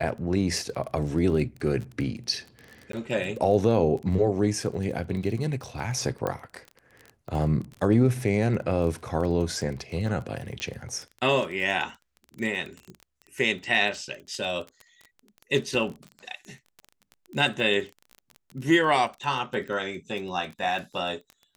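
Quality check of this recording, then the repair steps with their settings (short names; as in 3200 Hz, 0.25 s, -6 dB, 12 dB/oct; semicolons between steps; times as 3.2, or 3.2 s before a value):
crackle 21/s -33 dBFS
2.92–2.93 gap 13 ms
6.27 pop -16 dBFS
10.6 pop -17 dBFS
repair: de-click; interpolate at 2.92, 13 ms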